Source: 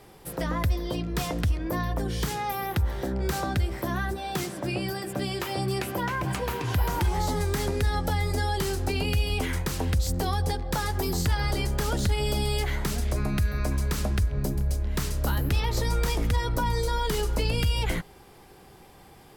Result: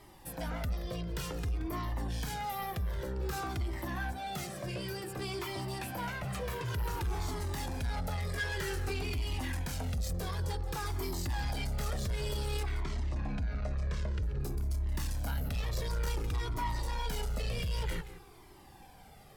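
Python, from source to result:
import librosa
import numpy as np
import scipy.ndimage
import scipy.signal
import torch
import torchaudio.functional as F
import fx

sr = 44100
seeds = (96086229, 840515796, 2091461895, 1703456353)

y = fx.peak_eq(x, sr, hz=1800.0, db=13.0, octaves=0.73, at=(8.33, 8.89))
y = 10.0 ** (-28.5 / 20.0) * np.tanh(y / 10.0 ** (-28.5 / 20.0))
y = fx.air_absorb(y, sr, metres=120.0, at=(12.63, 14.23))
y = y + 10.0 ** (-14.0 / 20.0) * np.pad(y, (int(176 * sr / 1000.0), 0))[:len(y)]
y = fx.comb_cascade(y, sr, direction='falling', hz=0.54)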